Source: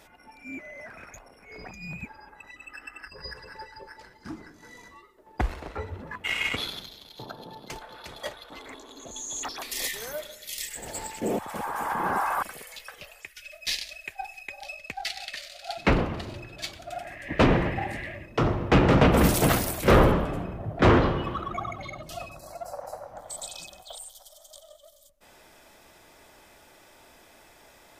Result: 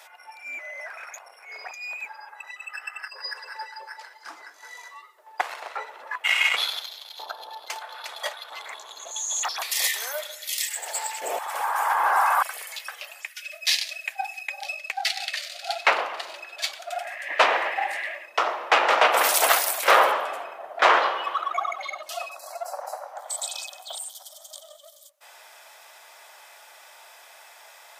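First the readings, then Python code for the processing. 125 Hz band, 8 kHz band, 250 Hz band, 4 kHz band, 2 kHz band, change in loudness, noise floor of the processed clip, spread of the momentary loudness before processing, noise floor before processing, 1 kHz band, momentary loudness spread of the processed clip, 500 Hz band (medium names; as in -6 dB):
under -40 dB, +7.0 dB, -21.5 dB, +7.0 dB, +7.0 dB, +2.0 dB, -50 dBFS, 23 LU, -55 dBFS, +6.5 dB, 21 LU, -1.5 dB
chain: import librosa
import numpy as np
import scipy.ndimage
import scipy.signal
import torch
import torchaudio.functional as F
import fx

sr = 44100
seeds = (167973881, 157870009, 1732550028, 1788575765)

y = scipy.signal.sosfilt(scipy.signal.butter(4, 670.0, 'highpass', fs=sr, output='sos'), x)
y = y * librosa.db_to_amplitude(7.0)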